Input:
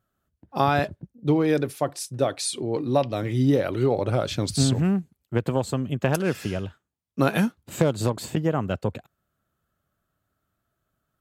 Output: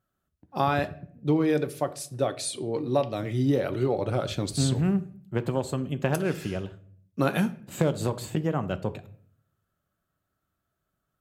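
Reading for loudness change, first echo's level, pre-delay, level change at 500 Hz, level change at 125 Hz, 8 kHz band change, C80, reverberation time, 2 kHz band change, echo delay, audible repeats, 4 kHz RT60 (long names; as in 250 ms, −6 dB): −3.0 dB, no echo audible, 5 ms, −3.0 dB, −3.0 dB, −4.0 dB, 20.5 dB, 0.55 s, −3.5 dB, no echo audible, no echo audible, 0.40 s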